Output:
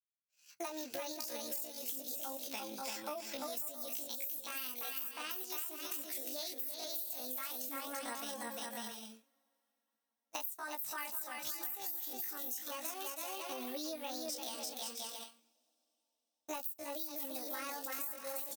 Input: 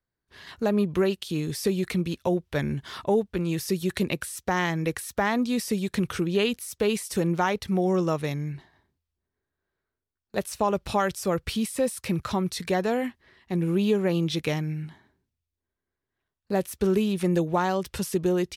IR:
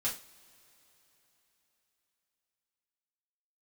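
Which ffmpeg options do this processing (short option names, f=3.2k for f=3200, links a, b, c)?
-filter_complex "[0:a]flanger=delay=19:depth=6.1:speed=0.36,aecho=1:1:340|544|666.4|739.8|783.9:0.631|0.398|0.251|0.158|0.1,asetrate=66075,aresample=44100,atempo=0.66742,agate=range=-33dB:threshold=-34dB:ratio=3:detection=peak,highpass=f=510:p=1,asplit=2[a][b];[1:a]atrim=start_sample=2205[c];[b][c]afir=irnorm=-1:irlink=0,volume=-25dB[d];[a][d]amix=inputs=2:normalize=0,crystalizer=i=4.5:c=0,highshelf=f=12k:g=10,acompressor=threshold=-34dB:ratio=10,volume=-4.5dB"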